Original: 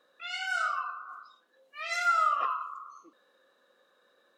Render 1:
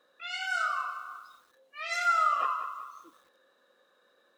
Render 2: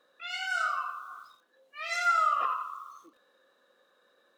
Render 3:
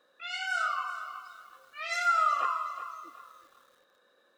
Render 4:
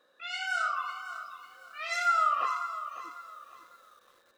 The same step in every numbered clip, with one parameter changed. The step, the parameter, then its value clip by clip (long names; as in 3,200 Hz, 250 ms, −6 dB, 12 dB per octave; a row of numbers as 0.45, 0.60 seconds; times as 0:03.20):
feedback echo at a low word length, delay time: 192, 85, 374, 550 milliseconds